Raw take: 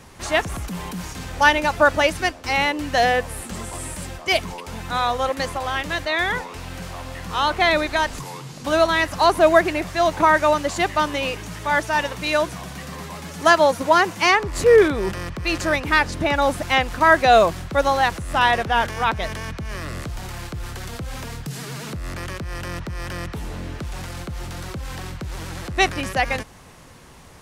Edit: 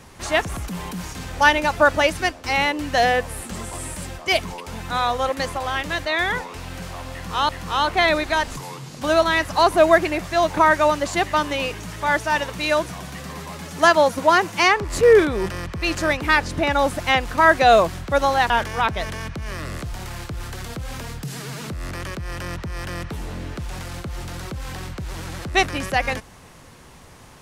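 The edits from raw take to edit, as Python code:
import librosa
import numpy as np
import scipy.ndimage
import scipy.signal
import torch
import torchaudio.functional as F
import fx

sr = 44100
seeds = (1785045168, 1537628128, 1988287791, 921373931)

y = fx.edit(x, sr, fx.repeat(start_s=7.12, length_s=0.37, count=2),
    fx.cut(start_s=18.13, length_s=0.6), tone=tone)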